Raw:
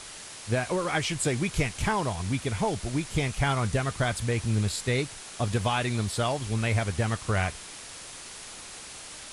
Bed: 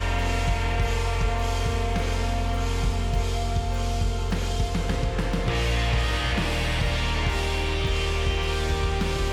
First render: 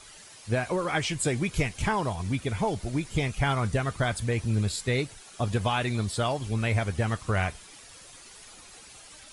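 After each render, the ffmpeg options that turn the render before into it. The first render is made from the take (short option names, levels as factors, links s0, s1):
-af "afftdn=nr=10:nf=-43"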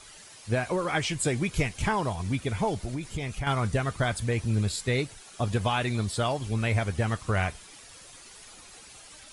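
-filter_complex "[0:a]asettb=1/sr,asplit=3[s0][s1][s2];[s0]atrim=end=2.854[s3];[s1]atrim=start=2.85:end=3.47,asetpts=PTS-STARTPTS,afade=t=in:d=0.004:c=qsin,afade=t=out:st=0.616:d=0.004:c=qsin,acompressor=threshold=0.0398:ratio=6:attack=3.2:release=140:knee=1:detection=peak[s4];[s2]atrim=start=3.466[s5];[s3][s4]acrossfade=d=0.004:c1=hsin:c2=qsin[s6];[s6][s5]acrossfade=d=0.004:c1=qsin:c2=hsin"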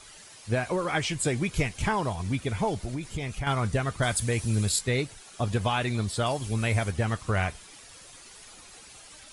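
-filter_complex "[0:a]asettb=1/sr,asplit=3[s0][s1][s2];[s0]atrim=end=4.024[s3];[s1]atrim=start=4.02:end=4.79,asetpts=PTS-STARTPTS,afade=t=in:d=0.004:c=qsin,afade=t=out:st=0.766:d=0.004:c=qsin,aemphasis=mode=production:type=50kf[s4];[s2]atrim=start=4.786[s5];[s3][s4]acrossfade=d=0.004:c1=hsin:c2=qsin[s6];[s6][s5]acrossfade=d=0.004:c1=qsin:c2=hsin,asettb=1/sr,asplit=3[s7][s8][s9];[s7]atrim=end=6.264[s10];[s8]atrim=start=6.26:end=6.91,asetpts=PTS-STARTPTS,afade=t=in:d=0.004:c=qsin,afade=t=out:st=0.646:d=0.004:c=qsin,highshelf=f=7900:g=10.5[s11];[s9]atrim=start=6.906[s12];[s10][s11]acrossfade=d=0.004:c1=hsin:c2=qsin[s13];[s13][s12]acrossfade=d=0.004:c1=qsin:c2=hsin"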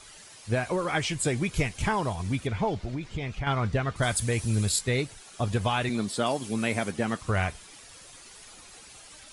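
-filter_complex "[0:a]asettb=1/sr,asplit=3[s0][s1][s2];[s0]atrim=end=2.474[s3];[s1]atrim=start=2.47:end=3.96,asetpts=PTS-STARTPTS,afade=t=in:d=0.004:c=qsin,afade=t=out:st=1.486:d=0.004:c=qsin,lowpass=4500[s4];[s2]atrim=start=3.956[s5];[s3][s4]acrossfade=d=0.004:c1=hsin:c2=qsin[s6];[s6][s5]acrossfade=d=0.004:c1=qsin:c2=hsin,asettb=1/sr,asplit=3[s7][s8][s9];[s7]atrim=end=5.894[s10];[s8]atrim=start=5.89:end=7.2,asetpts=PTS-STARTPTS,afade=t=in:d=0.004:c=qsin,afade=t=out:st=1.306:d=0.004:c=qsin,highpass=f=220:t=q:w=1.6[s11];[s9]atrim=start=7.196[s12];[s10][s11]acrossfade=d=0.004:c1=hsin:c2=qsin[s13];[s13][s12]acrossfade=d=0.004:c1=qsin:c2=hsin"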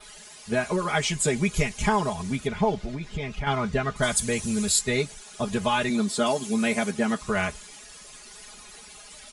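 -af "aecho=1:1:4.8:0.93,adynamicequalizer=threshold=0.00355:dfrequency=6800:dqfactor=2.9:tfrequency=6800:tqfactor=2.9:attack=5:release=100:ratio=0.375:range=2.5:mode=boostabove:tftype=bell"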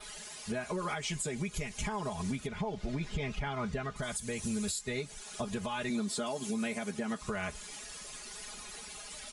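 -af "acompressor=threshold=0.0501:ratio=6,alimiter=level_in=1.19:limit=0.0631:level=0:latency=1:release=352,volume=0.841"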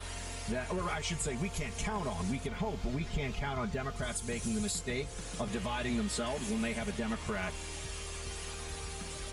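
-filter_complex "[1:a]volume=0.119[s0];[0:a][s0]amix=inputs=2:normalize=0"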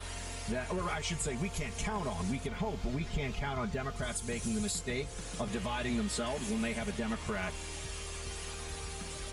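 -af anull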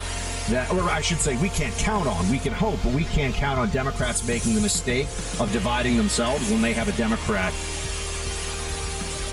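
-af "volume=3.98"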